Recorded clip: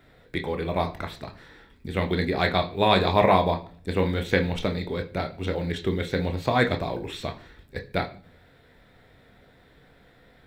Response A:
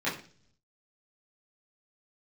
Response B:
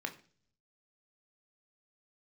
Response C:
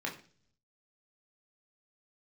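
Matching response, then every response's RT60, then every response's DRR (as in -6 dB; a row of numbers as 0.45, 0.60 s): B; 0.45, 0.45, 0.45 s; -10.5, 4.5, -2.0 dB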